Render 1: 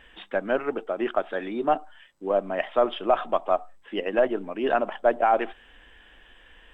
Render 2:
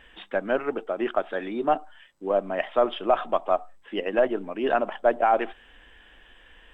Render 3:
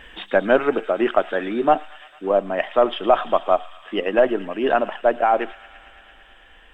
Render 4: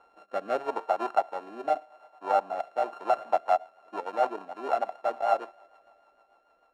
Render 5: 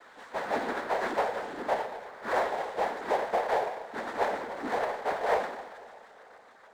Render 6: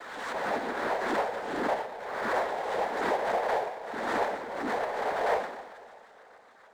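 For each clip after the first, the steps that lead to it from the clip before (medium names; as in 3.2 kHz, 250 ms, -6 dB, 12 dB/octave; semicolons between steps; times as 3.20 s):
no audible change
gain riding 2 s; feedback echo behind a high-pass 112 ms, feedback 83%, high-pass 2.4 kHz, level -11.5 dB; trim +5 dB
sorted samples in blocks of 32 samples; rotary cabinet horn 0.8 Hz, later 6.7 Hz, at 2.69 s; band-pass filter 750 Hz, Q 3.6; trim +1.5 dB
two-slope reverb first 0.66 s, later 2 s, DRR 0.5 dB; noise-vocoded speech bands 6; power-law waveshaper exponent 0.7; trim -8.5 dB
swell ahead of each attack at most 37 dB/s; trim -1.5 dB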